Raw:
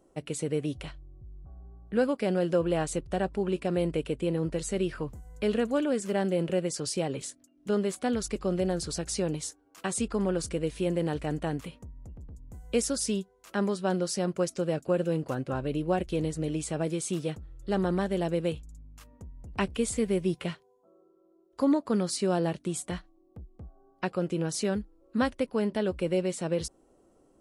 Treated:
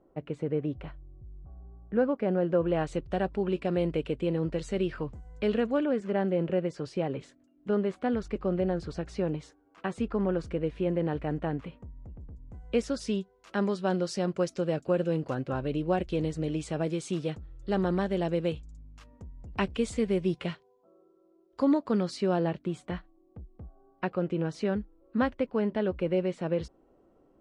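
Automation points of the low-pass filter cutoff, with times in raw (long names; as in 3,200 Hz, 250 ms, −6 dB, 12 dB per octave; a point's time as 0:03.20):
0:02.45 1,600 Hz
0:03.04 4,000 Hz
0:05.50 4,000 Hz
0:05.96 2,200 Hz
0:12.22 2,200 Hz
0:13.56 5,000 Hz
0:21.72 5,000 Hz
0:22.64 2,600 Hz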